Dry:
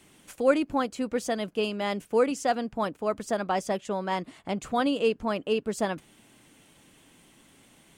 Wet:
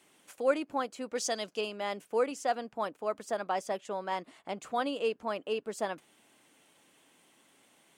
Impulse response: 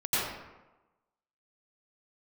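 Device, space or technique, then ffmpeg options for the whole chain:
filter by subtraction: -filter_complex "[0:a]asettb=1/sr,asplit=3[a][b][c];[a]atrim=end=1.154[d];[b]atrim=start=1.15:end=1.61,asetpts=PTS-STARTPTS,afade=t=in:d=0.004:c=qsin,afade=t=out:st=0.456:d=0.004:c=qsin,equalizer=f=5.7k:w=0.92:g=13.5[e];[c]atrim=start=1.606[f];[d][e]acrossfade=d=0.004:c1=hsin:c2=qsin[g];[g][f]acrossfade=d=0.004:c1=qsin:c2=hsin,asplit=2[h][i];[i]lowpass=640,volume=-1[j];[h][j]amix=inputs=2:normalize=0,volume=-6dB"

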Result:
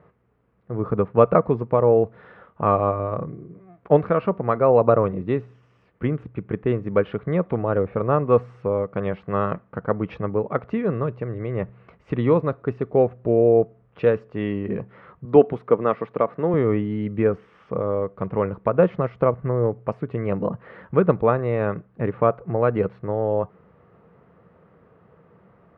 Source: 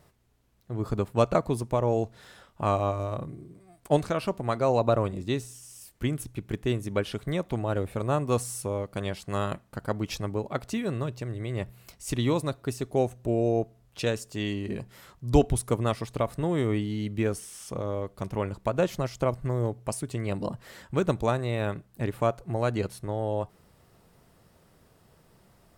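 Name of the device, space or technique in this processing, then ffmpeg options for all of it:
bass cabinet: -filter_complex "[0:a]highpass=77,equalizer=f=180:t=q:w=4:g=6,equalizer=f=470:t=q:w=4:g=9,equalizer=f=1.2k:t=q:w=4:g=6,lowpass=f=2.2k:w=0.5412,lowpass=f=2.2k:w=1.3066,asettb=1/sr,asplit=3[a][b][c];[a]atrim=end=15.254[d];[b]atrim=start=15.25:end=16.54,asetpts=PTS-STARTPTS,afade=t=in:d=0.004:c=qsin,afade=t=out:st=1.286:d=0.004:c=qsin,highpass=210[e];[c]atrim=start=16.536[f];[d][e]acrossfade=d=0.004:c1=hsin:c2=qsin[g];[g][f]acrossfade=d=0.004:c1=qsin:c2=hsin,volume=3.5dB"

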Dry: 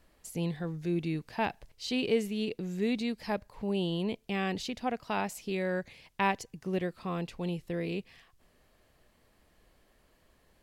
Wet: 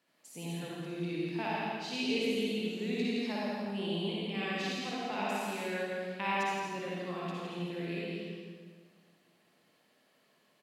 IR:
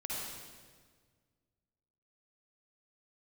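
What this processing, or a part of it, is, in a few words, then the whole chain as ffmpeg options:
PA in a hall: -filter_complex "[0:a]highpass=f=160:w=0.5412,highpass=f=160:w=1.3066,equalizer=f=3.2k:t=o:w=2:g=5.5,aecho=1:1:166:0.562[a];[1:a]atrim=start_sample=2205[b];[a][b]afir=irnorm=-1:irlink=0,volume=-6.5dB"

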